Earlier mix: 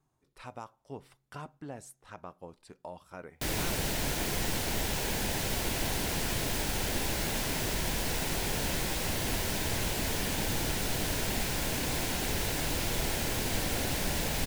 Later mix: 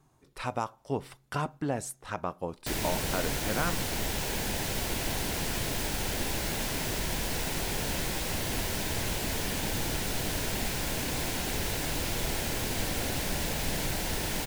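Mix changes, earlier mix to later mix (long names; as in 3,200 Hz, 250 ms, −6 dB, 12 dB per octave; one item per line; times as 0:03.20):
speech +11.5 dB
background: entry −0.75 s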